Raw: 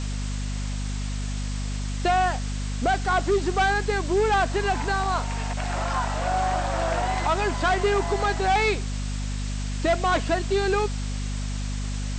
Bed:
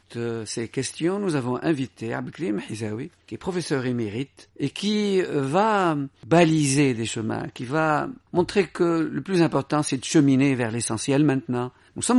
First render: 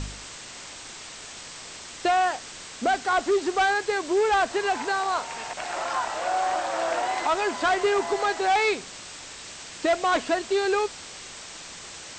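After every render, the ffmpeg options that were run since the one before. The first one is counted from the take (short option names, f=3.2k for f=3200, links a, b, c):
-af "bandreject=f=50:t=h:w=4,bandreject=f=100:t=h:w=4,bandreject=f=150:t=h:w=4,bandreject=f=200:t=h:w=4,bandreject=f=250:t=h:w=4"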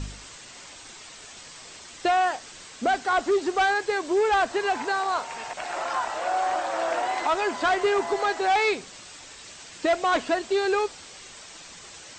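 -af "afftdn=nr=6:nf=-42"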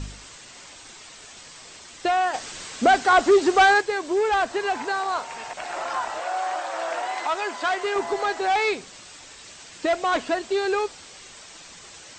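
-filter_complex "[0:a]asplit=3[a][b][c];[a]afade=t=out:st=2.33:d=0.02[d];[b]acontrast=76,afade=t=in:st=2.33:d=0.02,afade=t=out:st=3.8:d=0.02[e];[c]afade=t=in:st=3.8:d=0.02[f];[d][e][f]amix=inputs=3:normalize=0,asettb=1/sr,asplit=3[g][h][i];[g]atrim=end=6.214[j];[h]atrim=start=6.21:end=7.96,asetpts=PTS-STARTPTS,afade=t=in:d=0.004:c=qsin,afade=t=out:st=1.746:d=0.004:c=qsin,lowshelf=f=320:g=-12[k];[i]atrim=start=7.956[l];[j][k]acrossfade=d=0.004:c1=hsin:c2=qsin[m];[m][l]acrossfade=d=0.004:c1=qsin:c2=hsin"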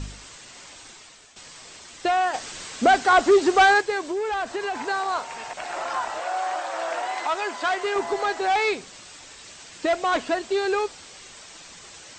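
-filter_complex "[0:a]asettb=1/sr,asplit=3[a][b][c];[a]atrim=end=4.104[d];[b]atrim=start=4.1:end=4.76,asetpts=PTS-STARTPTS,afade=t=in:d=0.004:c=qsin,afade=t=out:st=0.656:d=0.004:c=qsin,acompressor=threshold=-24dB:ratio=5:attack=3.2:release=140:knee=1:detection=peak[e];[c]atrim=start=4.756[f];[d][e]acrossfade=d=0.004:c1=hsin:c2=qsin[g];[g][f]acrossfade=d=0.004:c1=qsin:c2=hsin,asplit=2[h][i];[h]atrim=end=1.36,asetpts=PTS-STARTPTS,afade=t=out:st=0.83:d=0.53:silence=0.298538[j];[i]atrim=start=1.36,asetpts=PTS-STARTPTS,afade=t=in:d=0.004:c=hsin:silence=0.298538[k];[j][k]concat=n=2:v=0:a=1"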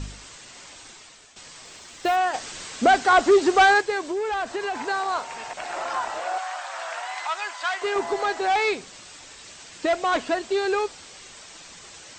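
-filter_complex "[0:a]asettb=1/sr,asplit=3[a][b][c];[a]atrim=end=1.654[d];[b]atrim=start=1.65:end=2.16,asetpts=PTS-STARTPTS,afade=t=in:d=0.004:c=qsin,afade=t=out:st=0.506:d=0.004:c=qsin,acrusher=bits=7:mode=log:mix=0:aa=0.000001[e];[c]atrim=start=2.156[f];[d][e]acrossfade=d=0.004:c1=hsin:c2=qsin[g];[g][f]acrossfade=d=0.004:c1=qsin:c2=hsin,asettb=1/sr,asplit=3[h][i][j];[h]atrim=end=6.384[k];[i]atrim=start=6.38:end=7.82,asetpts=PTS-STARTPTS,afade=t=in:d=0.004:c=qsin,afade=t=out:st=1.436:d=0.004:c=qsin,highpass=970[l];[j]atrim=start=7.816[m];[k][l]acrossfade=d=0.004:c1=hsin:c2=qsin[n];[n][m]acrossfade=d=0.004:c1=qsin:c2=hsin"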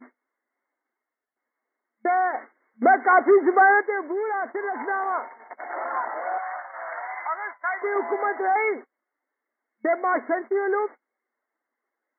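-af "agate=range=-33dB:threshold=-33dB:ratio=16:detection=peak,afftfilt=real='re*between(b*sr/4096,220,2200)':imag='im*between(b*sr/4096,220,2200)':win_size=4096:overlap=0.75"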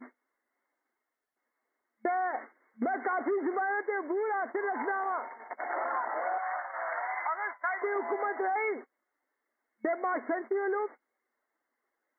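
-af "alimiter=limit=-17dB:level=0:latency=1:release=22,acompressor=threshold=-29dB:ratio=4"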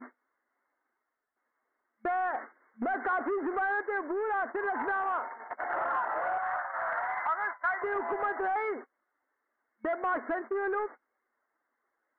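-af "asoftclip=type=tanh:threshold=-26.5dB,lowpass=f=1.5k:t=q:w=1.8"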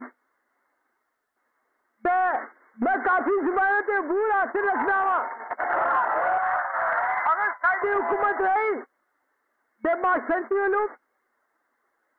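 -af "volume=8dB"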